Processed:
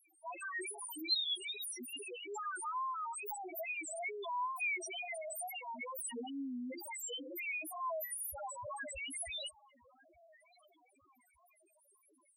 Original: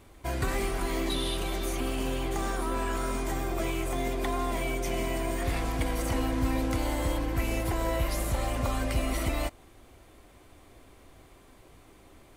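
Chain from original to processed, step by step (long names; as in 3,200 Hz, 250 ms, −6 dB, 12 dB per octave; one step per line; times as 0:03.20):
spectral tilt +4.5 dB per octave
feedback echo with a low-pass in the loop 1,192 ms, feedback 51%, low-pass 2,900 Hz, level −22 dB
spectral peaks only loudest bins 1
tape wow and flutter 120 cents
level +4 dB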